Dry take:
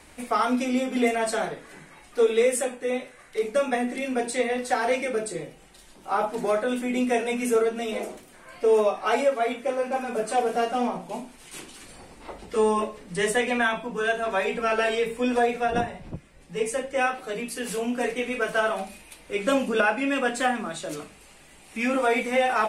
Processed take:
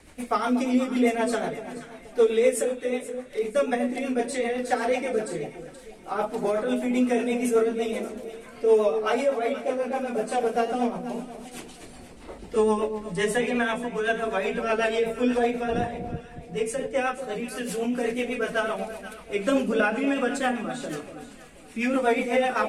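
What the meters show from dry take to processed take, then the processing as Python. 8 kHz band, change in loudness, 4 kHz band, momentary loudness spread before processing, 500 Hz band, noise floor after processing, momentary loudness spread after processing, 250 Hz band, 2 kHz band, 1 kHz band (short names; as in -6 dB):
-3.0 dB, -0.5 dB, -2.5 dB, 15 LU, 0.0 dB, -46 dBFS, 15 LU, +2.0 dB, -2.5 dB, -2.5 dB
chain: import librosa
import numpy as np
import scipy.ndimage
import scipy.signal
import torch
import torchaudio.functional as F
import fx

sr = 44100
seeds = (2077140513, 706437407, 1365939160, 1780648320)

y = fx.low_shelf(x, sr, hz=480.0, db=3.5)
y = fx.rotary(y, sr, hz=8.0)
y = fx.echo_alternate(y, sr, ms=239, hz=910.0, feedback_pct=57, wet_db=-9)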